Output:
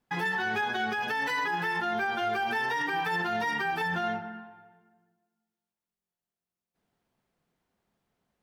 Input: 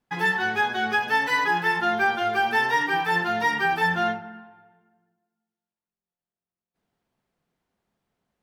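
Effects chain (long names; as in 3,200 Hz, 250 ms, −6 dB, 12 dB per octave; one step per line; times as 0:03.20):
brickwall limiter −22 dBFS, peak gain reduction 11.5 dB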